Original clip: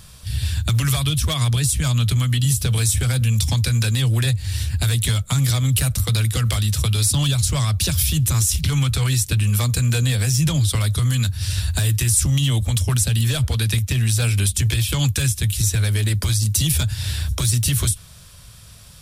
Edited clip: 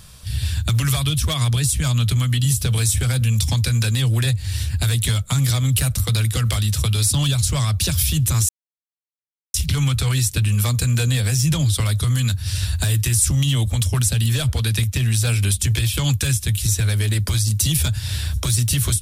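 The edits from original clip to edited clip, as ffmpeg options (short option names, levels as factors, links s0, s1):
-filter_complex "[0:a]asplit=2[s0][s1];[s0]atrim=end=8.49,asetpts=PTS-STARTPTS,afade=t=out:st=8.486:d=0.004:c=hsin,apad=pad_dur=1.05[s2];[s1]atrim=start=8.49,asetpts=PTS-STARTPTS,afade=t=in:d=0.004:c=hsin[s3];[s2][s3]concat=n=2:v=0:a=1"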